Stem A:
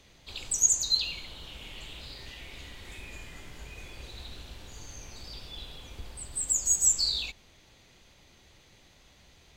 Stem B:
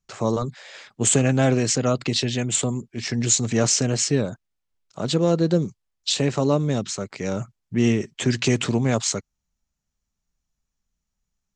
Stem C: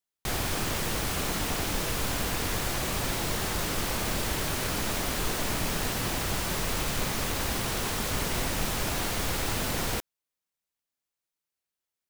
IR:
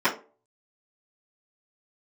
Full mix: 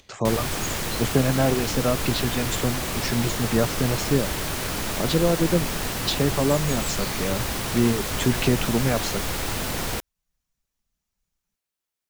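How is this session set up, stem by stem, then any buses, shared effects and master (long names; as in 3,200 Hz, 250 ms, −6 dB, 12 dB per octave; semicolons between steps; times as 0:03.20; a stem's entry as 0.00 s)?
−5.5 dB, 0.00 s, no send, upward compression, threshold −43 dBFS; automatic ducking −8 dB, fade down 0.20 s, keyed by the second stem
0.0 dB, 0.00 s, no send, reverb reduction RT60 0.96 s; treble cut that deepens with the level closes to 1,600 Hz, closed at −16.5 dBFS
+2.0 dB, 0.00 s, no send, no processing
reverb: not used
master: no processing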